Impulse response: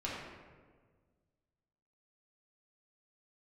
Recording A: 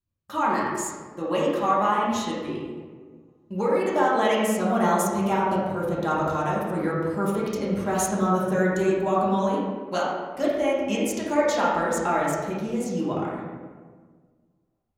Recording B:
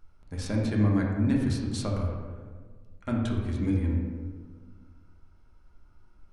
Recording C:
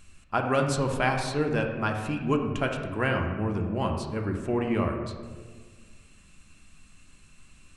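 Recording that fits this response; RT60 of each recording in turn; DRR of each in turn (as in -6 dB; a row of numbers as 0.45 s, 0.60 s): A; 1.6 s, 1.6 s, 1.6 s; -7.0 dB, -2.0 dB, 2.5 dB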